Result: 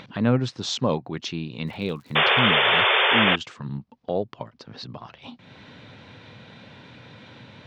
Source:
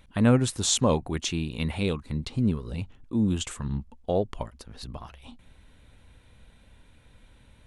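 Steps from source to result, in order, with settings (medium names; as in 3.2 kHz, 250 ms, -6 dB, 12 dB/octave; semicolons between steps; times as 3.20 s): elliptic band-pass 120–5100 Hz, stop band 40 dB; 1.66–2.19 s: crackle 130 per s -41 dBFS; 2.15–3.36 s: painted sound noise 360–3600 Hz -19 dBFS; upward compressor, threshold -31 dBFS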